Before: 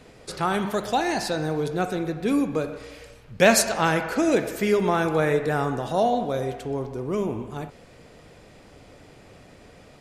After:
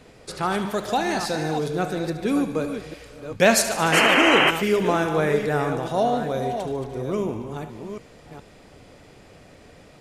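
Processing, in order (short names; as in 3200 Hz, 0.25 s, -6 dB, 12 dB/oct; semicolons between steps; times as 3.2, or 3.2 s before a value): reverse delay 0.42 s, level -8.5 dB; painted sound noise, 3.92–4.51, 250–3200 Hz -18 dBFS; thin delay 73 ms, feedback 74%, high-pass 2400 Hz, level -12.5 dB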